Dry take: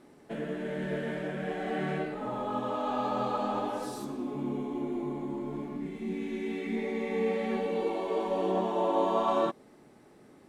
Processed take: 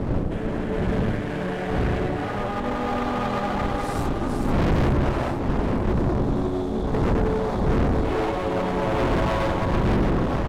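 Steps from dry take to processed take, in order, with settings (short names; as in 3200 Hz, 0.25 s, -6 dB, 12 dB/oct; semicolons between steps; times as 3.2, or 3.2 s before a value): wind noise 340 Hz -27 dBFS; split-band echo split 620 Hz, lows 95 ms, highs 0.443 s, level -3 dB; spectral delete 5.92–8.03, 1300–3400 Hz; one-sided clip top -38.5 dBFS, bottom -22 dBFS; low shelf 83 Hz +8 dB; de-hum 80.79 Hz, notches 11; pitch shift -0.5 st; gain +6.5 dB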